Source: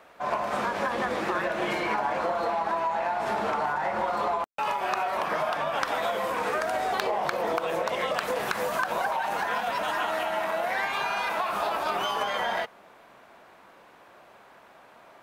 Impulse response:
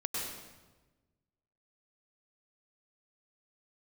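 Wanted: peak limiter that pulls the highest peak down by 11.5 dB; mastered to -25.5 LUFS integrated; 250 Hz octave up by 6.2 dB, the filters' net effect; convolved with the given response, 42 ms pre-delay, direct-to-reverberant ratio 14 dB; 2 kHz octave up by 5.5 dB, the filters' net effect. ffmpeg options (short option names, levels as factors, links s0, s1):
-filter_complex "[0:a]equalizer=f=250:t=o:g=8.5,equalizer=f=2000:t=o:g=7,alimiter=limit=0.112:level=0:latency=1,asplit=2[s0][s1];[1:a]atrim=start_sample=2205,adelay=42[s2];[s1][s2]afir=irnorm=-1:irlink=0,volume=0.126[s3];[s0][s3]amix=inputs=2:normalize=0,volume=1.26"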